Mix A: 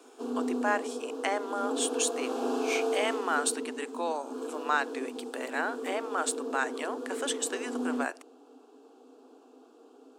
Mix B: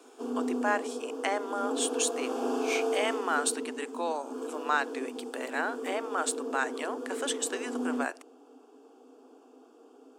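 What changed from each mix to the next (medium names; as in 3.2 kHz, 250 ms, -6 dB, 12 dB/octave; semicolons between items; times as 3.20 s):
background: add band-stop 4 kHz, Q 5.6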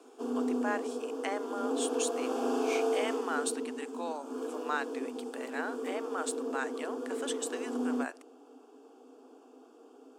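speech -6.0 dB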